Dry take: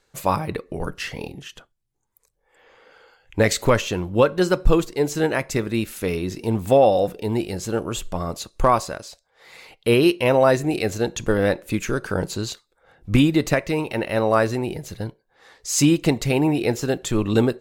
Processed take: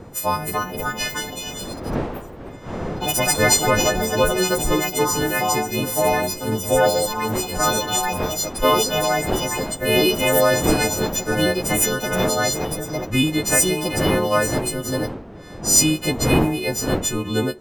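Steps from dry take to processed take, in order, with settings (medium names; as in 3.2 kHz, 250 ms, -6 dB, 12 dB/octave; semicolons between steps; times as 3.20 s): partials quantised in pitch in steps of 3 st; wind noise 440 Hz -29 dBFS; ever faster or slower copies 333 ms, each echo +3 st, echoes 3; trim -3 dB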